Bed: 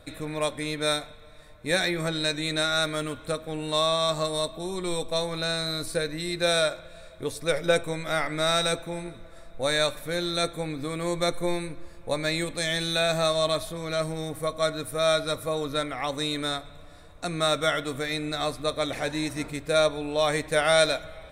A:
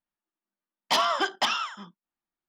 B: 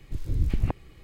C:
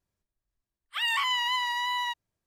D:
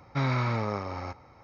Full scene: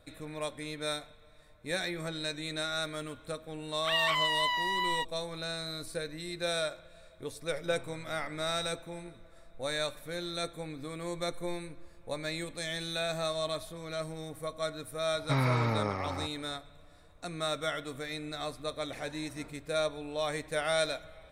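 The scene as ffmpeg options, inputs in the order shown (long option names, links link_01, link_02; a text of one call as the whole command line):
ffmpeg -i bed.wav -i cue0.wav -i cue1.wav -i cue2.wav -i cue3.wav -filter_complex "[4:a]asplit=2[link_01][link_02];[0:a]volume=-9dB[link_03];[3:a]equalizer=frequency=8300:width_type=o:width=0.77:gain=-9[link_04];[link_01]acompressor=threshold=-37dB:ratio=6:attack=3.2:release=140:knee=1:detection=peak[link_05];[link_02]highpass=41[link_06];[link_04]atrim=end=2.46,asetpts=PTS-STARTPTS,volume=-1.5dB,afade=type=in:duration=0.004:curve=hsin,afade=type=out:start_time=2.456:duration=0.004:curve=hsin,adelay=2910[link_07];[link_05]atrim=end=1.43,asetpts=PTS-STARTPTS,volume=-15dB,afade=type=in:duration=0.004:curve=hsin,afade=type=out:start_time=1.426:duration=0.004:curve=hsin,adelay=7560[link_08];[link_06]atrim=end=1.43,asetpts=PTS-STARTPTS,volume=-1dB,afade=type=in:duration=0.004:curve=hsin,afade=type=out:start_time=1.426:duration=0.004:curve=hsin,adelay=15140[link_09];[link_03][link_07][link_08][link_09]amix=inputs=4:normalize=0" out.wav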